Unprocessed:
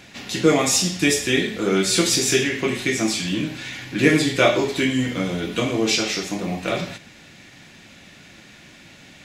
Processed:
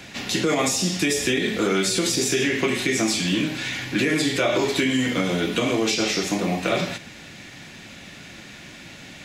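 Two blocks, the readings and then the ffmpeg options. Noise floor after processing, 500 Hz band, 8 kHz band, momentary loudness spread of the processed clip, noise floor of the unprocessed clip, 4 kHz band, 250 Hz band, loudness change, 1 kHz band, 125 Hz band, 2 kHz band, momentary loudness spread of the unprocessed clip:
−42 dBFS, −2.0 dB, −2.5 dB, 19 LU, −47 dBFS, −1.0 dB, −1.5 dB, −1.5 dB, −1.0 dB, −2.0 dB, −1.0 dB, 10 LU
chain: -filter_complex "[0:a]alimiter=limit=-13dB:level=0:latency=1:release=90,acrossover=split=160|780[link_01][link_02][link_03];[link_01]acompressor=threshold=-43dB:ratio=4[link_04];[link_02]acompressor=threshold=-25dB:ratio=4[link_05];[link_03]acompressor=threshold=-27dB:ratio=4[link_06];[link_04][link_05][link_06]amix=inputs=3:normalize=0,volume=4.5dB"

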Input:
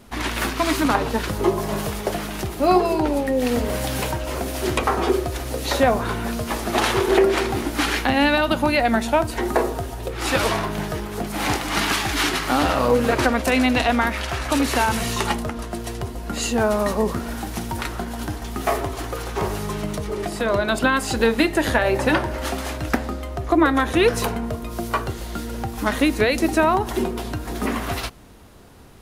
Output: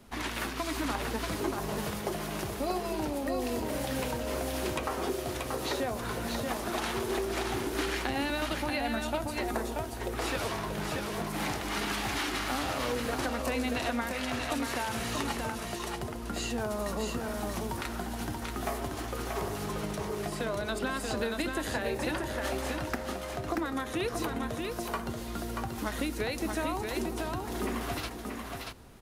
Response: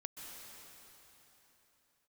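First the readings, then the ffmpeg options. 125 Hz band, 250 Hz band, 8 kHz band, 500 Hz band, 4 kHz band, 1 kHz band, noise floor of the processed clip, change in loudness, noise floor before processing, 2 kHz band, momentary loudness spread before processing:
−10.5 dB, −11.5 dB, −8.5 dB, −12.0 dB, −9.5 dB, −11.5 dB, −39 dBFS, −11.5 dB, −32 dBFS, −11.5 dB, 11 LU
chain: -filter_complex "[0:a]acrossover=split=110|4500[link_01][link_02][link_03];[link_01]acompressor=threshold=-37dB:ratio=4[link_04];[link_02]acompressor=threshold=-24dB:ratio=4[link_05];[link_03]acompressor=threshold=-35dB:ratio=4[link_06];[link_04][link_05][link_06]amix=inputs=3:normalize=0,aecho=1:1:413|633:0.126|0.631,volume=-7.5dB"

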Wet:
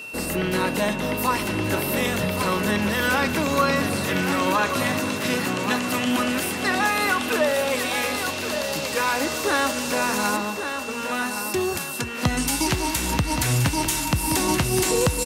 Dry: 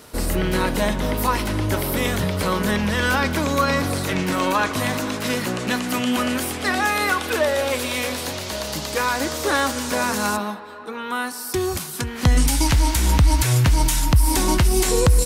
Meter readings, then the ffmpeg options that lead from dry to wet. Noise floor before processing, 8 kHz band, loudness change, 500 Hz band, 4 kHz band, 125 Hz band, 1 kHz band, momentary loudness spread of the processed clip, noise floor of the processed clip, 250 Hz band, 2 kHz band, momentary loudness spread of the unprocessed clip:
−32 dBFS, −1.0 dB, −1.5 dB, −1.0 dB, −1.0 dB, −6.0 dB, −1.0 dB, 5 LU, −29 dBFS, −1.0 dB, 0.0 dB, 9 LU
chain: -filter_complex "[0:a]aeval=exprs='val(0)+0.0224*sin(2*PI*2700*n/s)':channel_layout=same,acontrast=21,highpass=120,asplit=2[link_01][link_02];[link_02]aecho=0:1:1124|2248|3372|4496|5620:0.398|0.159|0.0637|0.0255|0.0102[link_03];[link_01][link_03]amix=inputs=2:normalize=0,volume=-6dB"

